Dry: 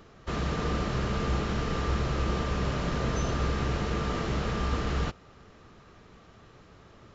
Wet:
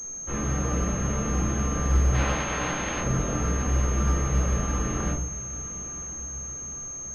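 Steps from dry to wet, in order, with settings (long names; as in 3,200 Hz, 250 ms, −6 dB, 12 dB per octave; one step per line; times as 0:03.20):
0:02.13–0:02.99: ceiling on every frequency bin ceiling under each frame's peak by 27 dB
multi-voice chorus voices 2, 0.49 Hz, delay 19 ms, depth 4.9 ms
feedback delay with all-pass diffusion 965 ms, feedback 53%, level −16 dB
rectangular room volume 510 cubic metres, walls furnished, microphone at 2.1 metres
switching amplifier with a slow clock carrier 6,400 Hz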